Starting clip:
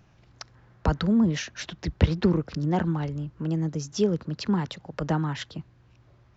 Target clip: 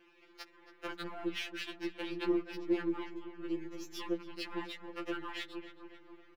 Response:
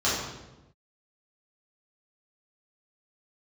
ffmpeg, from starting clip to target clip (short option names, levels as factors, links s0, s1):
-filter_complex "[0:a]aeval=exprs='if(lt(val(0),0),0.447*val(0),val(0))':c=same,bandreject=f=60:t=h:w=6,bandreject=f=120:t=h:w=6,bandreject=f=180:t=h:w=6,asoftclip=type=tanh:threshold=0.0631,equalizer=f=160:t=o:w=0.67:g=-8,equalizer=f=630:t=o:w=0.67:g=-9,equalizer=f=2500:t=o:w=0.67:g=7,equalizer=f=6300:t=o:w=0.67:g=-10,asplit=2[s0][s1];[s1]adelay=275,lowpass=f=2200:p=1,volume=0.237,asplit=2[s2][s3];[s3]adelay=275,lowpass=f=2200:p=1,volume=0.54,asplit=2[s4][s5];[s5]adelay=275,lowpass=f=2200:p=1,volume=0.54,asplit=2[s6][s7];[s7]adelay=275,lowpass=f=2200:p=1,volume=0.54,asplit=2[s8][s9];[s9]adelay=275,lowpass=f=2200:p=1,volume=0.54,asplit=2[s10][s11];[s11]adelay=275,lowpass=f=2200:p=1,volume=0.54[s12];[s0][s2][s4][s6][s8][s10][s12]amix=inputs=7:normalize=0,asplit=2[s13][s14];[s14]acompressor=threshold=0.00447:ratio=6,volume=1.26[s15];[s13][s15]amix=inputs=2:normalize=0,lowshelf=f=210:t=q:w=3:g=-12.5,afftfilt=real='re*2.83*eq(mod(b,8),0)':imag='im*2.83*eq(mod(b,8),0)':win_size=2048:overlap=0.75,volume=0.708"